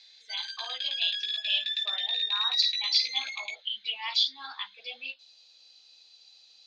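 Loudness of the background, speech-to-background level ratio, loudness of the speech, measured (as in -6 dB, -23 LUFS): -29.5 LUFS, -1.0 dB, -30.5 LUFS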